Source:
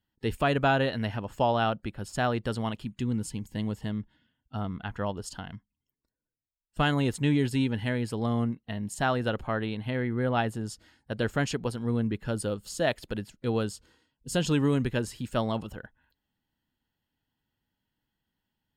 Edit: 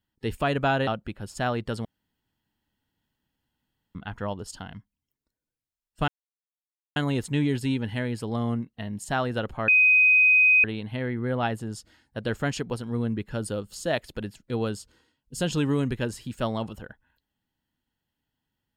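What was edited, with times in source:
0:00.87–0:01.65: remove
0:02.63–0:04.73: fill with room tone
0:06.86: splice in silence 0.88 s
0:09.58: insert tone 2,510 Hz −14.5 dBFS 0.96 s

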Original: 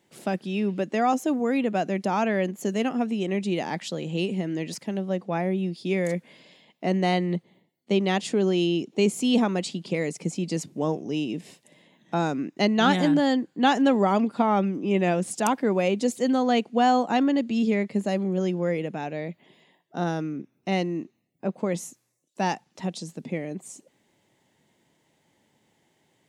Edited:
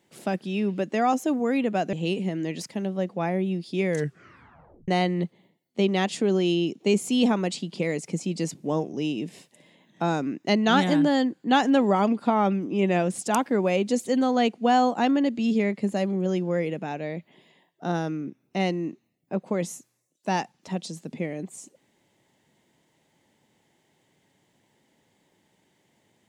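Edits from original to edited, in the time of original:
0:01.93–0:04.05: remove
0:06.01: tape stop 0.99 s

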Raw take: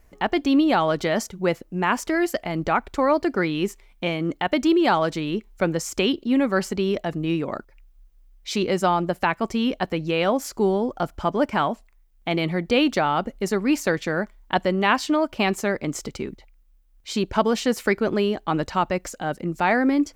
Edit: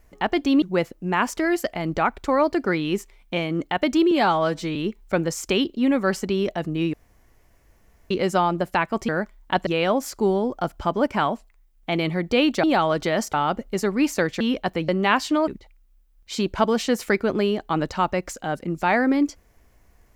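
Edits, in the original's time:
0:00.62–0:01.32: move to 0:13.02
0:04.81–0:05.24: time-stretch 1.5×
0:07.42–0:08.59: fill with room tone
0:09.57–0:10.05: swap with 0:14.09–0:14.67
0:15.26–0:16.25: remove

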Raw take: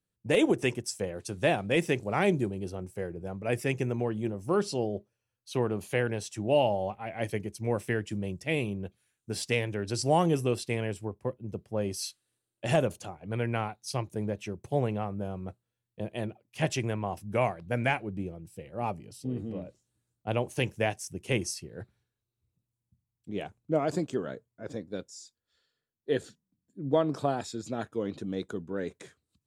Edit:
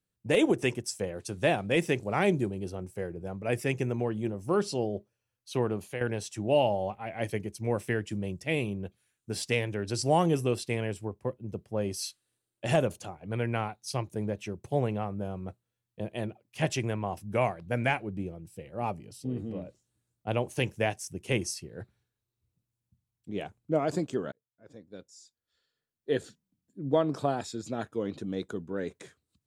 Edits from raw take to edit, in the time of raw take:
0:05.73–0:06.01: fade out, to −10.5 dB
0:24.32–0:26.15: fade in

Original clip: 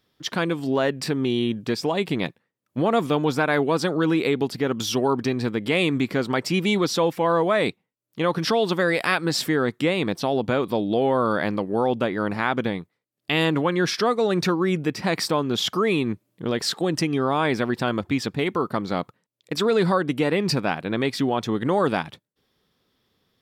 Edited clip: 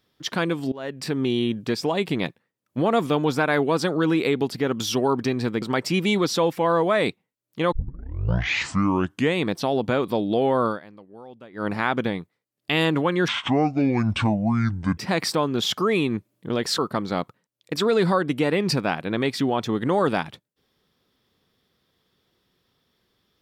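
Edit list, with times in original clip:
0:00.72–0:01.19: fade in, from −23.5 dB
0:05.62–0:06.22: remove
0:08.32: tape start 1.71 s
0:11.26–0:12.27: duck −21 dB, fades 0.14 s
0:13.88–0:14.93: play speed 62%
0:16.74–0:18.58: remove

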